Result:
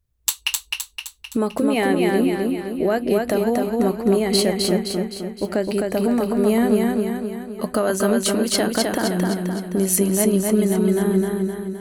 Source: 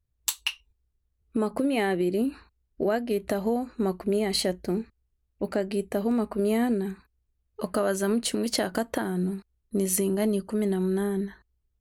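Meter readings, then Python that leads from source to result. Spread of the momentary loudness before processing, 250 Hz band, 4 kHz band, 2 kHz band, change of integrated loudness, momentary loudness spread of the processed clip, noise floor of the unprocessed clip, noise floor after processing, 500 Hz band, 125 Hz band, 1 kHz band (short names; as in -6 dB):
7 LU, +7.5 dB, +7.5 dB, +7.5 dB, +7.0 dB, 8 LU, -76 dBFS, -54 dBFS, +7.5 dB, +8.0 dB, +7.5 dB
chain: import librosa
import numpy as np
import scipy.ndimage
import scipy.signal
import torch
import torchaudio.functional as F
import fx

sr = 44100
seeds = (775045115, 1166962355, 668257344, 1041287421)

p1 = fx.high_shelf(x, sr, hz=9600.0, db=3.5)
p2 = p1 + fx.echo_feedback(p1, sr, ms=259, feedback_pct=52, wet_db=-3.0, dry=0)
y = p2 * 10.0 ** (5.0 / 20.0)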